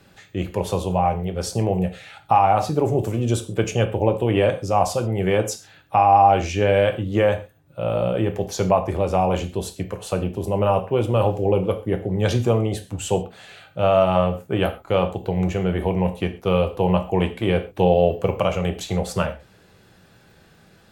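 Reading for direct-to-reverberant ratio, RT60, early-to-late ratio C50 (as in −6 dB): 6.0 dB, non-exponential decay, 13.0 dB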